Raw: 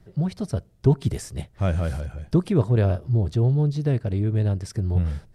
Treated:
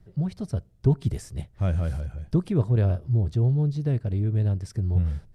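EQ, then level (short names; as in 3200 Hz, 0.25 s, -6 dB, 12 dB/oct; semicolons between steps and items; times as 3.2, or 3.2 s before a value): low shelf 180 Hz +7.5 dB; -6.5 dB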